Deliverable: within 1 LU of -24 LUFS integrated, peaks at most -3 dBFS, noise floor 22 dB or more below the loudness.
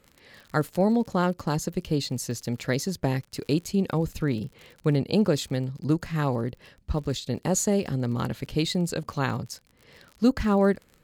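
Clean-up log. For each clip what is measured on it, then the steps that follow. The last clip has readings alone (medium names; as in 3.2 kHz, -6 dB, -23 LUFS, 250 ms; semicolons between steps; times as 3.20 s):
tick rate 49 per s; loudness -27.0 LUFS; peak level -9.5 dBFS; loudness target -24.0 LUFS
-> de-click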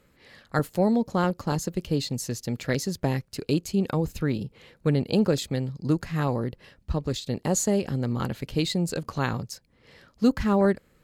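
tick rate 0.18 per s; loudness -27.0 LUFS; peak level -9.5 dBFS; loudness target -24.0 LUFS
-> trim +3 dB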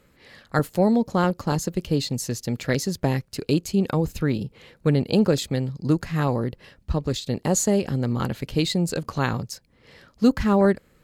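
loudness -24.0 LUFS; peak level -6.5 dBFS; noise floor -60 dBFS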